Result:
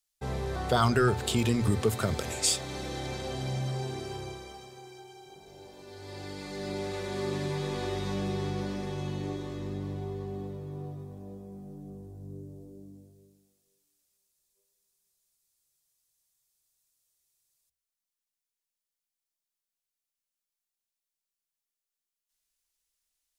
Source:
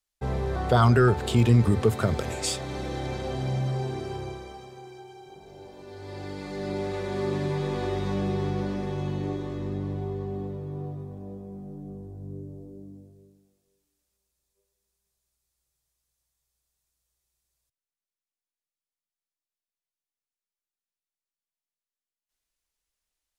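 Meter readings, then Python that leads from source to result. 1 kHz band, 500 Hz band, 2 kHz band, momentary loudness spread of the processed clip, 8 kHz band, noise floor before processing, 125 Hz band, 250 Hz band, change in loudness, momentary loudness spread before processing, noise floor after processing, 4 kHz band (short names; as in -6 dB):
-3.5 dB, -4.5 dB, -2.0 dB, 21 LU, +4.5 dB, under -85 dBFS, -7.0 dB, -4.5 dB, -4.5 dB, 23 LU, under -85 dBFS, +2.0 dB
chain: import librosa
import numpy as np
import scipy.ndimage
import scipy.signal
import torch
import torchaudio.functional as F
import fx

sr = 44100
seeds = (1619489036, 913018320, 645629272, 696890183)

y = fx.high_shelf(x, sr, hz=2900.0, db=10.0)
y = fx.hum_notches(y, sr, base_hz=60, count=2)
y = F.gain(torch.from_numpy(y), -4.5).numpy()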